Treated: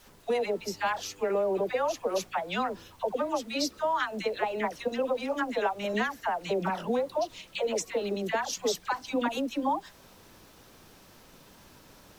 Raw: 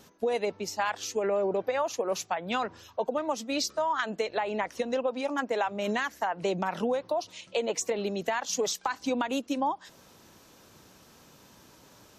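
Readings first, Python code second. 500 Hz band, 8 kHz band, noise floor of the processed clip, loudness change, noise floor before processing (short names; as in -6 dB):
0.0 dB, -3.5 dB, -55 dBFS, 0.0 dB, -57 dBFS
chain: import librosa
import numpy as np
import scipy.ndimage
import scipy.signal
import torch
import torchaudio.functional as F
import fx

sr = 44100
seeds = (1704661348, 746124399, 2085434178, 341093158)

y = fx.peak_eq(x, sr, hz=6900.0, db=-5.0, octaves=0.44)
y = fx.dispersion(y, sr, late='lows', ms=77.0, hz=900.0)
y = fx.dmg_noise_colour(y, sr, seeds[0], colour='pink', level_db=-59.0)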